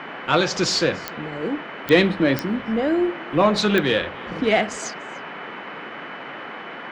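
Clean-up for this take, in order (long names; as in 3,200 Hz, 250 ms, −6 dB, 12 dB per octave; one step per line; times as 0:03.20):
click removal
notch filter 3,000 Hz, Q 30
noise reduction from a noise print 30 dB
echo removal 293 ms −22.5 dB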